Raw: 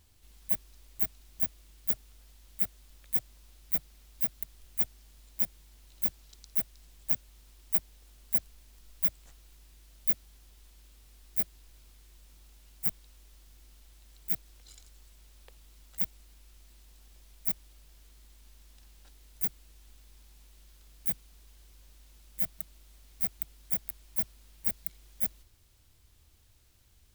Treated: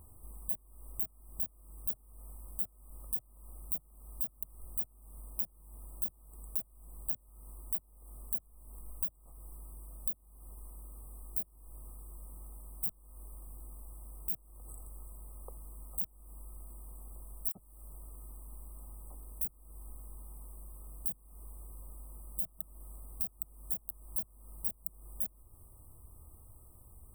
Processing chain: FFT band-reject 1.3–7.9 kHz; compression 6:1, threshold -41 dBFS, peak gain reduction 21 dB; 17.49–19.45 s: phase dispersion lows, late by 63 ms, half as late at 2.5 kHz; trim +8.5 dB

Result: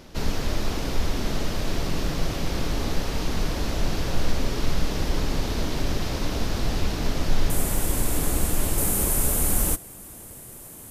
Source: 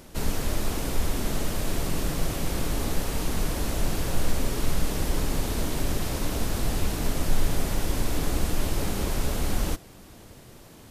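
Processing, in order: resonant high shelf 6.8 kHz -7.5 dB, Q 1.5, from 7.50 s +7 dB, from 8.78 s +12.5 dB; trim +1.5 dB

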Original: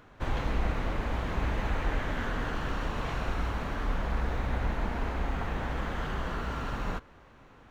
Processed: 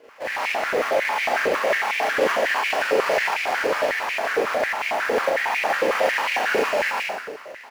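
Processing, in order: comb filter that takes the minimum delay 0.41 ms; Schroeder reverb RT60 1 s, combs from 28 ms, DRR -7.5 dB; in parallel at -8 dB: sample-and-hold 11×; on the sum: level rider gain up to 6 dB; doubling 41 ms -11 dB; compression 2:1, threshold -17 dBFS, peak gain reduction 5.5 dB; step-sequenced high-pass 11 Hz 470–2300 Hz

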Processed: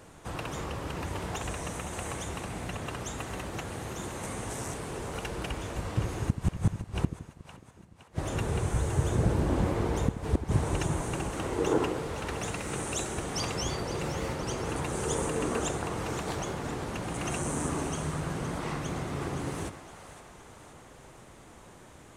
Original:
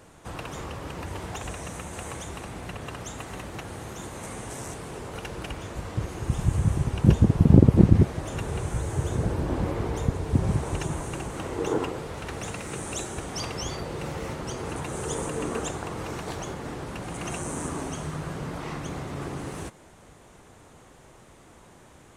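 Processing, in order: inverted gate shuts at -13 dBFS, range -39 dB; two-band feedback delay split 590 Hz, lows 81 ms, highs 515 ms, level -11.5 dB

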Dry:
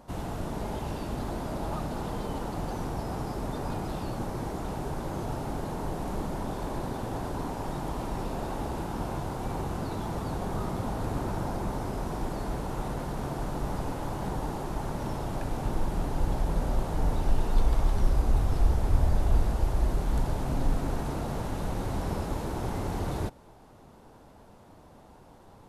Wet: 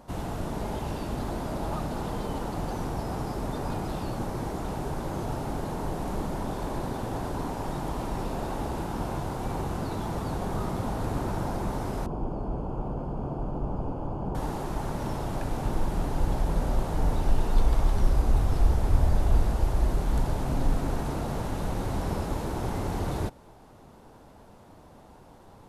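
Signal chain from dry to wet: 12.06–14.35 s: boxcar filter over 23 samples; trim +1.5 dB

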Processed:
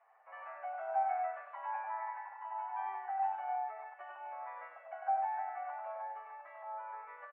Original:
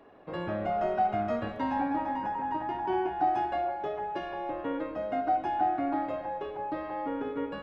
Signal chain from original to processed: elliptic band-pass 680–2200 Hz, stop band 50 dB; on a send: delay 102 ms -3.5 dB; on the sum: speed mistake 24 fps film run at 25 fps; endless flanger 8.4 ms -1.2 Hz; trim -5 dB

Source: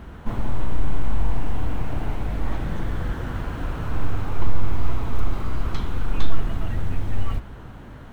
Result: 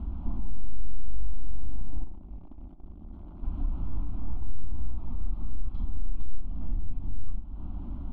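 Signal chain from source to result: one-sided wavefolder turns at -21 dBFS; tone controls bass +15 dB, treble +10 dB; compression 4:1, threshold -21 dBFS, peak gain reduction 20.5 dB; 2.03–3.43 s: valve stage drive 33 dB, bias 0.3; distance through air 490 m; static phaser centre 470 Hz, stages 6; tape echo 87 ms, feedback 72%, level -10 dB, low-pass 1.7 kHz; reverberation RT60 2.0 s, pre-delay 7 ms, DRR 15.5 dB; trim -4 dB

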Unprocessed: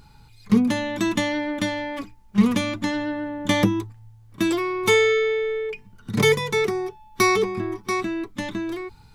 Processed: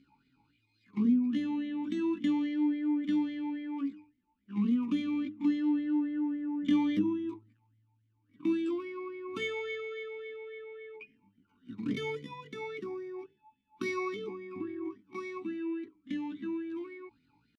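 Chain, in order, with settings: tempo 0.52×; dynamic bell 1.8 kHz, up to -8 dB, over -38 dBFS, Q 0.99; talking filter i-u 3.6 Hz

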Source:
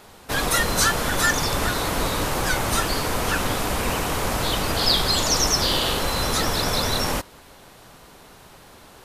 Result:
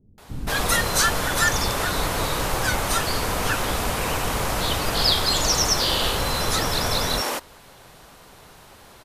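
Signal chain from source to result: bands offset in time lows, highs 180 ms, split 270 Hz

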